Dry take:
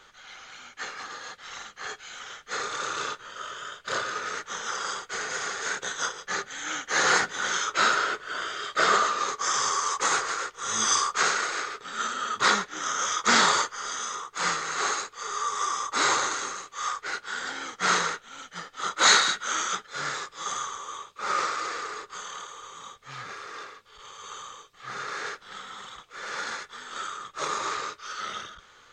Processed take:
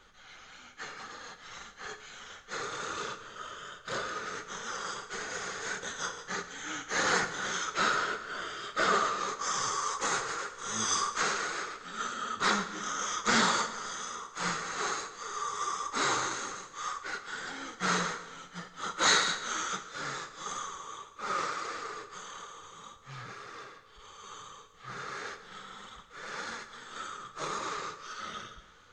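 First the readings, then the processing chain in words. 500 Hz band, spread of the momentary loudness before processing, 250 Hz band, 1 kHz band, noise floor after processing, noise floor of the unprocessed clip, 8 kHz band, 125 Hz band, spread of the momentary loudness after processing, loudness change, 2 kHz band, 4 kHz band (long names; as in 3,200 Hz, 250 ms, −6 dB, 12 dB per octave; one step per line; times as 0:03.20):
−3.5 dB, 18 LU, 0.0 dB, −5.5 dB, −55 dBFS, −55 dBFS, −6.5 dB, +2.0 dB, 18 LU, −6.0 dB, −6.0 dB, −6.5 dB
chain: low-shelf EQ 270 Hz +11 dB
flanger 1.7 Hz, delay 3.2 ms, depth 3.9 ms, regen −40%
dense smooth reverb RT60 1.4 s, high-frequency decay 0.85×, DRR 9 dB
level −3 dB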